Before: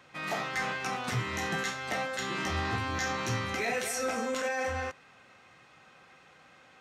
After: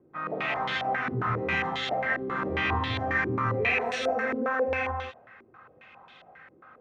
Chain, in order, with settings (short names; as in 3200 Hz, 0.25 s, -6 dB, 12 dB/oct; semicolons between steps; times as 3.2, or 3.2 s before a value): non-linear reverb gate 0.22 s rising, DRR 0 dB; stepped low-pass 7.4 Hz 360–3500 Hz; gain -2 dB